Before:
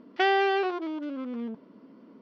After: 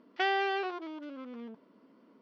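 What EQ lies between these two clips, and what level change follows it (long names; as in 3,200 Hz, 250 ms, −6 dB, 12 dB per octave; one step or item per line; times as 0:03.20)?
low-shelf EQ 370 Hz −9 dB
−4.0 dB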